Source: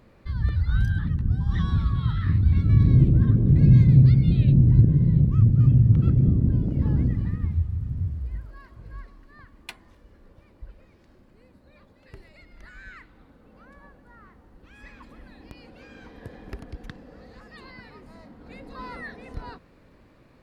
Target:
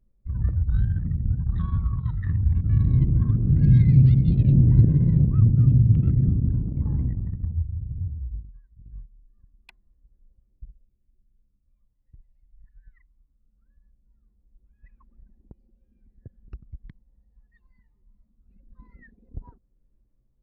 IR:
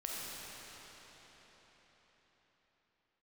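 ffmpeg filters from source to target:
-af "aphaser=in_gain=1:out_gain=1:delay=1.1:decay=0.51:speed=0.2:type=sinusoidal,anlmdn=158,highshelf=f=2900:g=9.5,volume=0.501"

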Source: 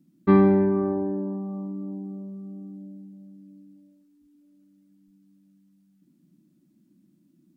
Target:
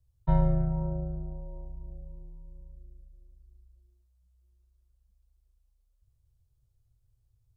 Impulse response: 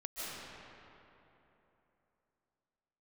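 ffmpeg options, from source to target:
-af "afreqshift=-230,equalizer=f=125:t=o:w=1:g=10,equalizer=f=250:t=o:w=1:g=-12,equalizer=f=500:t=o:w=1:g=9,equalizer=f=2000:t=o:w=1:g=-8,volume=0.422"

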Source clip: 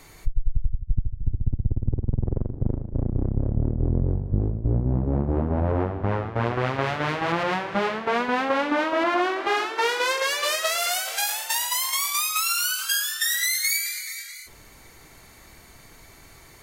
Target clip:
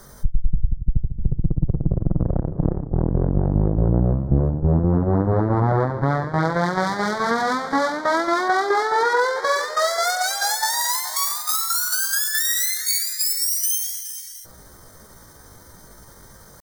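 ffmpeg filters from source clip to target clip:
-af "asetrate=60591,aresample=44100,atempo=0.727827,asuperstop=centerf=2700:order=4:qfactor=1.3,volume=1.68"

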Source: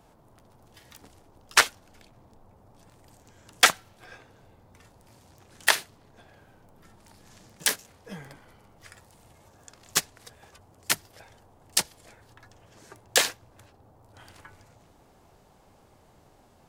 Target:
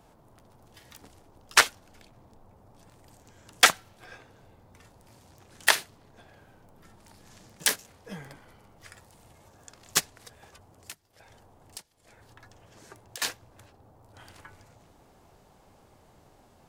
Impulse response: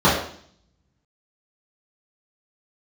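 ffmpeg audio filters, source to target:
-filter_complex "[0:a]asettb=1/sr,asplit=3[s0][s1][s2];[s0]atrim=end=10.144[s3];[s1]atrim=start=10.14:end=13.22,asetpts=PTS-STARTPTS,afade=t=in:d=0.004:c=qsin,afade=t=out:st=3.076:d=0.004:c=qsin,acompressor=threshold=0.00794:ratio=12[s4];[s2]atrim=start=13.216[s5];[s3][s4]acrossfade=d=0.004:c1=hsin:c2=qsin[s6];[s6][s5]acrossfade=d=0.004:c1=qsin:c2=hsin"

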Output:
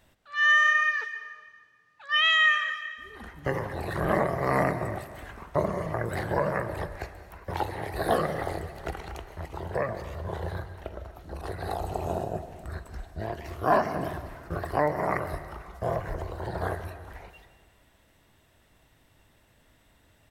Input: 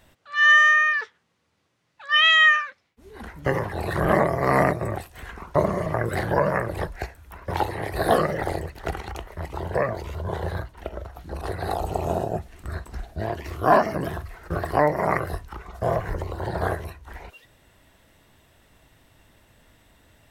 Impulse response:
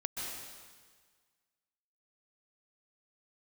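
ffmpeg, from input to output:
-filter_complex "[0:a]asplit=2[s0][s1];[s1]adelay=290,highpass=300,lowpass=3400,asoftclip=type=hard:threshold=0.168,volume=0.0501[s2];[s0][s2]amix=inputs=2:normalize=0,asplit=2[s3][s4];[1:a]atrim=start_sample=2205[s5];[s4][s5]afir=irnorm=-1:irlink=0,volume=0.335[s6];[s3][s6]amix=inputs=2:normalize=0,volume=0.422"

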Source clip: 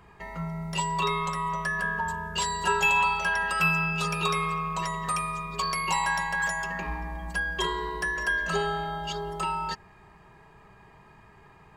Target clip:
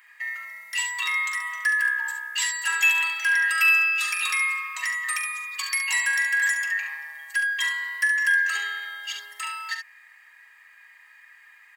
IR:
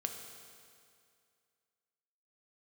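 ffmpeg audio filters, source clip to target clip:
-af "highpass=f=1900:t=q:w=7.3,aemphasis=mode=production:type=50fm,aecho=1:1:43|70:0.282|0.422,volume=0.668"

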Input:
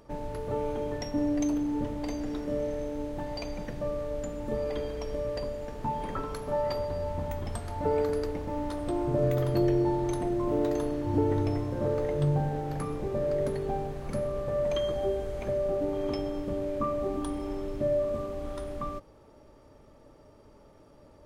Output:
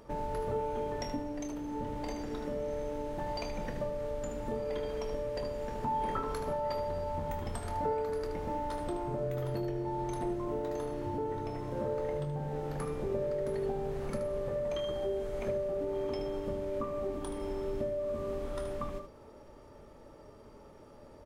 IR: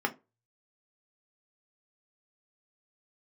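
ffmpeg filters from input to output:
-filter_complex "[0:a]acompressor=threshold=0.0224:ratio=6,aecho=1:1:25|76:0.299|0.355,asplit=2[s0][s1];[1:a]atrim=start_sample=2205[s2];[s1][s2]afir=irnorm=-1:irlink=0,volume=0.112[s3];[s0][s3]amix=inputs=2:normalize=0"

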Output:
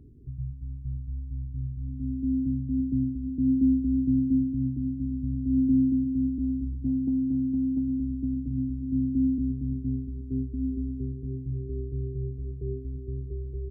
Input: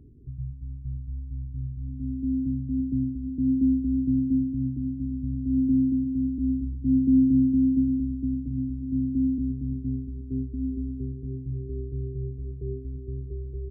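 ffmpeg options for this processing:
-filter_complex "[0:a]asettb=1/sr,asplit=3[s0][s1][s2];[s0]atrim=end=6.284[s3];[s1]atrim=start=6.28:end=8.37,asetpts=PTS-STARTPTS,afade=t=in:d=0.004:c=qsin,afade=t=out:st=2.086:d=0.004:c=qsin,acompressor=threshold=0.0631:ratio=6[s4];[s2]atrim=start=8.366[s5];[s3][s4]acrossfade=d=0.004:c1=hsin:c2=qsin[s6];[s6][s5]acrossfade=d=0.004:c1=qsin:c2=hsin"

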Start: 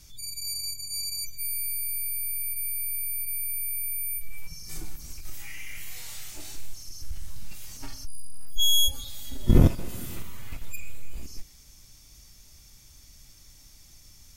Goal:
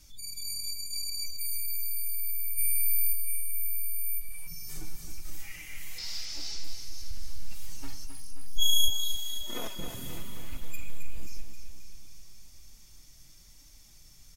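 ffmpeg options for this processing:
-filter_complex "[0:a]asplit=3[s0][s1][s2];[s0]afade=t=out:st=2.57:d=0.02[s3];[s1]acontrast=65,afade=t=in:st=2.57:d=0.02,afade=t=out:st=3.12:d=0.02[s4];[s2]afade=t=in:st=3.12:d=0.02[s5];[s3][s4][s5]amix=inputs=3:normalize=0,asettb=1/sr,asplit=3[s6][s7][s8];[s6]atrim=end=5.984[s9];[s7]atrim=start=5.98:end=6.64,asetpts=PTS-STARTPTS,afade=t=in:d=0.004:c=qsin,afade=t=out:st=0.656:d=0.004:c=qsin,lowpass=f=5100:t=q:w=8[s10];[s8]atrim=start=6.636[s11];[s9][s10]acrossfade=d=0.004:c1=hsin:c2=qsin[s12];[s12][s11]acrossfade=d=0.004:c1=qsin:c2=hsin,flanger=delay=3.1:depth=4.4:regen=41:speed=0.95:shape=triangular,asettb=1/sr,asplit=3[s13][s14][s15];[s13]atrim=end=8.904[s16];[s14]atrim=start=8.9:end=9.79,asetpts=PTS-STARTPTS,afade=t=in:d=0.004:c=qsin,afade=t=out:st=0.886:d=0.004:c=qsin,highpass=760[s17];[s15]atrim=start=9.786[s18];[s16][s17]acrossfade=d=0.004:c1=hsin:c2=qsin[s19];[s19][s18]acrossfade=d=0.004:c1=qsin:c2=hsin,aecho=1:1:266|532|798|1064|1330|1596|1862|2128:0.422|0.249|0.147|0.0866|0.0511|0.0301|0.0178|0.0105"

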